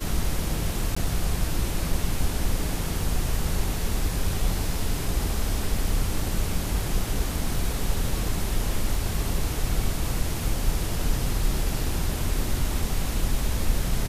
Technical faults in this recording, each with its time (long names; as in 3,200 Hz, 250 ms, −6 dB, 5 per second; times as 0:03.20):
0:00.95–0:00.96: drop-out 15 ms